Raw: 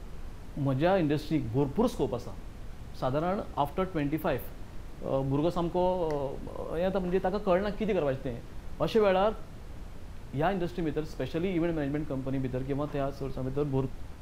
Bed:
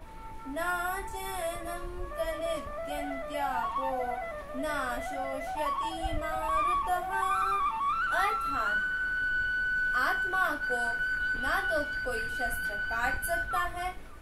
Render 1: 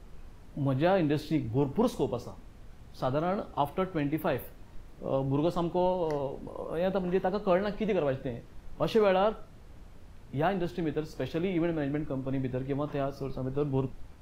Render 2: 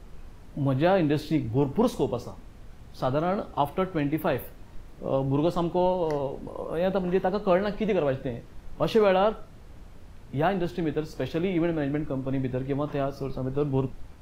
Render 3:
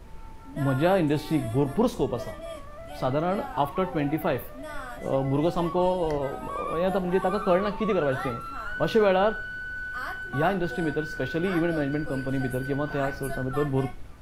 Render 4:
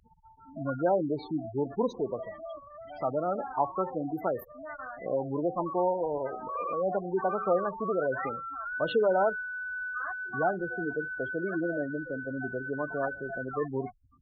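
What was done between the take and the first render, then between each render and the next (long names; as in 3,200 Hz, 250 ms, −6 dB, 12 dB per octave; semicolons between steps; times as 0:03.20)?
noise reduction from a noise print 7 dB
level +3.5 dB
mix in bed −6 dB
gate on every frequency bin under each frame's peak −15 dB strong; high-pass filter 530 Hz 6 dB per octave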